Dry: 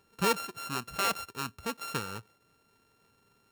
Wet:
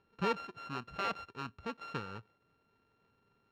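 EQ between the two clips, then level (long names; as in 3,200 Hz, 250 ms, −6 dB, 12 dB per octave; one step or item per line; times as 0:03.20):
high-frequency loss of the air 220 metres
−4.0 dB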